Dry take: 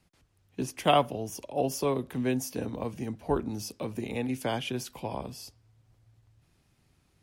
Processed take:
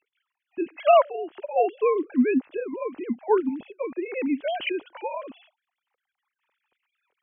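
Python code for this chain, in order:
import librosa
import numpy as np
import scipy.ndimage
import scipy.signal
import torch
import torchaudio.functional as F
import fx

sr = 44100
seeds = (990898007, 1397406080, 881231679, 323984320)

y = fx.sine_speech(x, sr)
y = F.gain(torch.from_numpy(y), 6.0).numpy()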